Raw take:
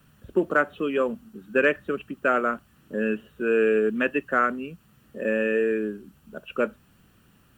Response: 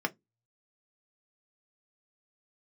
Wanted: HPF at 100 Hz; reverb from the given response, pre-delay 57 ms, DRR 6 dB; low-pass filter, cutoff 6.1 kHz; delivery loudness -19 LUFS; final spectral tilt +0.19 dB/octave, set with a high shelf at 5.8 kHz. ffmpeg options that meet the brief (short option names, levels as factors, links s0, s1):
-filter_complex "[0:a]highpass=100,lowpass=6100,highshelf=f=5800:g=7,asplit=2[s0][s1];[1:a]atrim=start_sample=2205,adelay=57[s2];[s1][s2]afir=irnorm=-1:irlink=0,volume=0.224[s3];[s0][s3]amix=inputs=2:normalize=0,volume=1.88"